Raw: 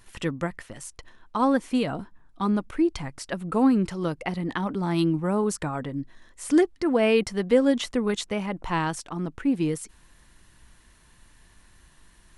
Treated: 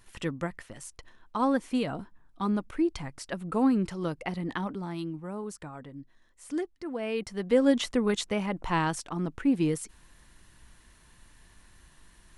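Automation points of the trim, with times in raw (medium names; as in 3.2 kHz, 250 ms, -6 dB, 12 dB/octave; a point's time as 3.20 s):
4.61 s -4 dB
5.01 s -12.5 dB
7.05 s -12.5 dB
7.69 s -1 dB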